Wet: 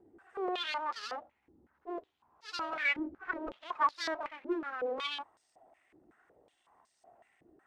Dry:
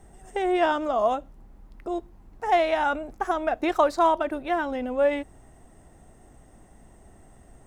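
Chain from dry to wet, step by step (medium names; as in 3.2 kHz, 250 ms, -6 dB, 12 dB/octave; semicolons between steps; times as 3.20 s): harmonic-percussive separation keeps harmonic; full-wave rectifier; 2.99–3.52 s: tilt EQ -2.5 dB/octave; crackling interface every 0.75 s, samples 64, repeat, from 0.48 s; step-sequenced band-pass 5.4 Hz 330–4800 Hz; trim +5.5 dB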